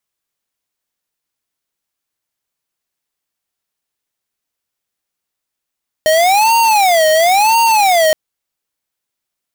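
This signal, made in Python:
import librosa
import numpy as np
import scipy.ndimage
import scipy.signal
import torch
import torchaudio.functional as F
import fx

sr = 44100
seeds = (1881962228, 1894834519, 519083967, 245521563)

y = fx.siren(sr, length_s=2.07, kind='wail', low_hz=623.0, high_hz=924.0, per_s=0.97, wave='square', level_db=-10.5)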